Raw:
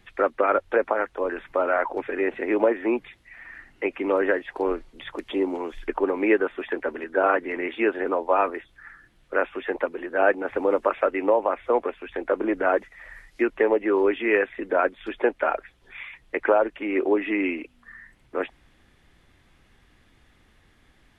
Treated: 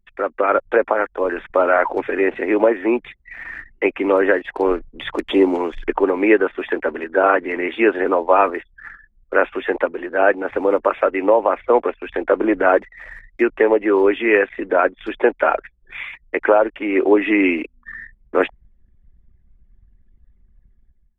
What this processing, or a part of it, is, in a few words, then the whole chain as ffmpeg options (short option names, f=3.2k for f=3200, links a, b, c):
voice memo with heavy noise removal: -af "anlmdn=0.0158,dynaudnorm=f=120:g=7:m=13.5dB,volume=-1dB"